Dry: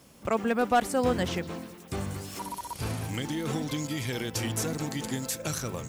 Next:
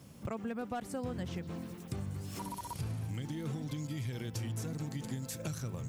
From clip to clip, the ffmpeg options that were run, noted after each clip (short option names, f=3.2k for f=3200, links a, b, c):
-af "equalizer=f=120:w=0.74:g=12,acompressor=threshold=-33dB:ratio=4,volume=-4dB"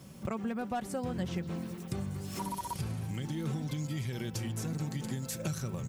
-af "aecho=1:1:5.3:0.34,volume=3dB"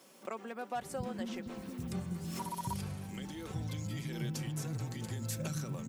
-filter_complex "[0:a]acrossover=split=290[a][b];[a]adelay=750[c];[c][b]amix=inputs=2:normalize=0,volume=-2dB"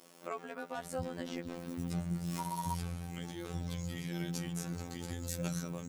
-af "afftfilt=real='hypot(re,im)*cos(PI*b)':imag='0':win_size=2048:overlap=0.75,asoftclip=type=hard:threshold=-21dB,volume=4dB"